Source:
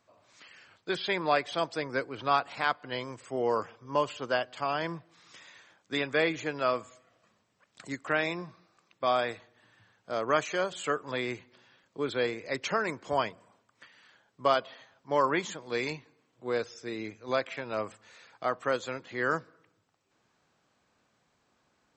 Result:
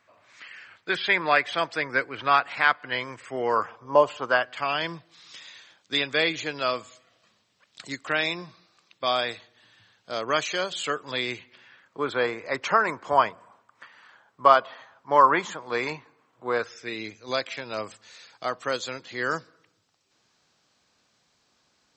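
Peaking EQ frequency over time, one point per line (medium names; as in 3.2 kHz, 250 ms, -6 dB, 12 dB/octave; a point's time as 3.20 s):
peaking EQ +11.5 dB 1.6 oct
3.43 s 1.9 kHz
3.98 s 630 Hz
4.94 s 4 kHz
11.26 s 4 kHz
12.05 s 1.1 kHz
16.54 s 1.1 kHz
17.15 s 4.9 kHz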